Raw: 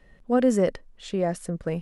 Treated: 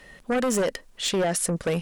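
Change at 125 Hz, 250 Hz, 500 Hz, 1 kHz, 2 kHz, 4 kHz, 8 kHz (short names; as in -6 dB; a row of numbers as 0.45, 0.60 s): 0.0, -3.0, -0.5, +1.5, +7.0, +13.0, +13.5 dB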